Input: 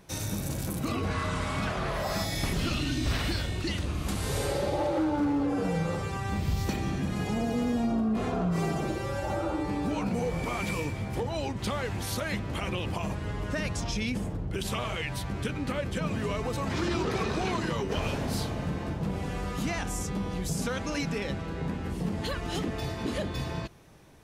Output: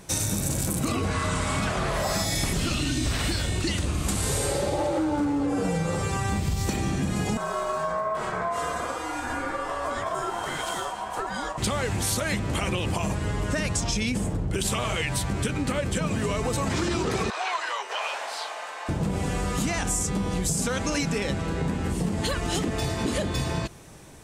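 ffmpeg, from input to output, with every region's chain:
-filter_complex "[0:a]asettb=1/sr,asplit=3[s0][s1][s2];[s0]atrim=end=7.374[s3];[s1]atrim=start=7.37:end=11.58,asetpts=PTS-STARTPTS,afade=t=in:d=0.004:c=qsin,afade=t=out:st=4.206:d=0.004:c=qsin,aeval=exprs='val(0)*sin(2*PI*860*n/s)':c=same,flanger=delay=6:depth=2.6:regen=-72:speed=1.8:shape=sinusoidal[s4];[s2]atrim=start=11.576[s5];[s3][s4]acrossfade=d=0.004:c1=hsin:c2=qsin[s6];[s6][s5]acrossfade=d=0.004:c1=qsin:c2=hsin,asettb=1/sr,asplit=3[s7][s8][s9];[s7]atrim=end=17.304[s10];[s8]atrim=start=17.3:end=18.89,asetpts=PTS-STARTPTS,afade=t=in:d=0.004:c=qsin,afade=t=out:st=1.586:d=0.004:c=qsin,highpass=f=720:w=0.5412,highpass=f=720:w=1.3066,highshelf=f=5200:g=-8,acrossover=split=4800[s11][s12];[s12]acompressor=threshold=0.00126:ratio=4:attack=1:release=60[s13];[s11][s13]amix=inputs=2:normalize=0[s14];[s9]atrim=start=18.886[s15];[s10][s14]acrossfade=d=0.004:c1=hsin:c2=qsin[s16];[s16][s15]acrossfade=d=0.004:c1=qsin:c2=hsin,equalizer=f=8100:t=o:w=0.73:g=10,acompressor=threshold=0.0316:ratio=6,volume=2.37"

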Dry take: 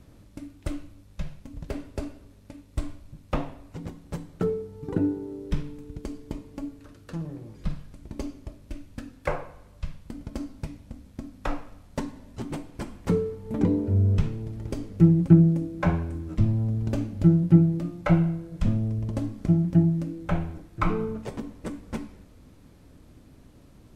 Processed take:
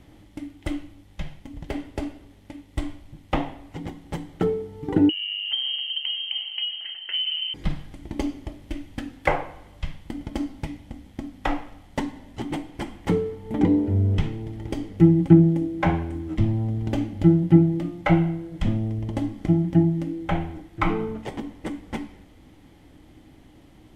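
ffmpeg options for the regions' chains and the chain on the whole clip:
-filter_complex "[0:a]asettb=1/sr,asplit=3[s0][s1][s2];[s0]atrim=end=5.094[s3];[s1]atrim=start=5.09:end=7.54,asetpts=PTS-STARTPTS,afade=t=in:d=0.004:c=qsin,afade=t=out:st=2.446:d=0.004:c=qsin,acompressor=threshold=0.0178:ratio=10:attack=3.2:release=140:knee=1:detection=peak,lowpass=f=2700:t=q:w=0.5098,lowpass=f=2700:t=q:w=0.6013,lowpass=f=2700:t=q:w=0.9,lowpass=f=2700:t=q:w=2.563,afreqshift=-3200[s4];[s2]atrim=start=7.536[s5];[s3][s4]acrossfade=d=0.004:c1=hsin:c2=qsin[s6];[s6][s5]acrossfade=d=0.004:c1=qsin:c2=hsin,equalizer=f=315:t=o:w=0.33:g=8,equalizer=f=800:t=o:w=0.33:g=10,equalizer=f=2000:t=o:w=0.33:g=10,equalizer=f=3150:t=o:w=0.33:g=10,dynaudnorm=f=770:g=13:m=2"

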